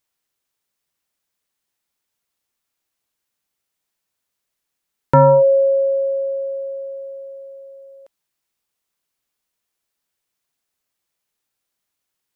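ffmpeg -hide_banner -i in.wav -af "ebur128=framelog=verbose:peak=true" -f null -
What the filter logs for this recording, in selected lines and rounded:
Integrated loudness:
  I:         -15.9 LUFS
  Threshold: -28.5 LUFS
Loudness range:
  LRA:        17.7 LU
  Threshold: -41.0 LUFS
  LRA low:   -35.8 LUFS
  LRA high:  -18.1 LUFS
True peak:
  Peak:       -5.3 dBFS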